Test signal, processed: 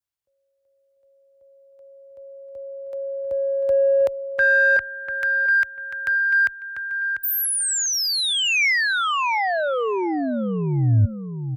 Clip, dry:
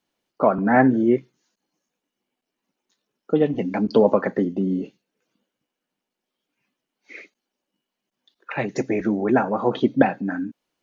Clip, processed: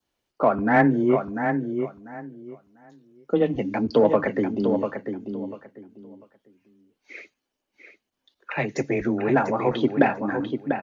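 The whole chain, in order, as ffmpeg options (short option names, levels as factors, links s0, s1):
-filter_complex "[0:a]lowshelf=f=120:t=q:w=1.5:g=8,asplit=2[s0][s1];[s1]adelay=694,lowpass=f=4500:p=1,volume=0.447,asplit=2[s2][s3];[s3]adelay=694,lowpass=f=4500:p=1,volume=0.21,asplit=2[s4][s5];[s5]adelay=694,lowpass=f=4500:p=1,volume=0.21[s6];[s0][s2][s4][s6]amix=inputs=4:normalize=0,adynamicequalizer=threshold=0.0158:dfrequency=2200:dqfactor=2.5:tfrequency=2200:tqfactor=2.5:attack=5:release=100:ratio=0.375:range=2.5:mode=boostabove:tftype=bell,afreqshift=13,asplit=2[s7][s8];[s8]asoftclip=type=tanh:threshold=0.178,volume=0.299[s9];[s7][s9]amix=inputs=2:normalize=0,volume=0.708"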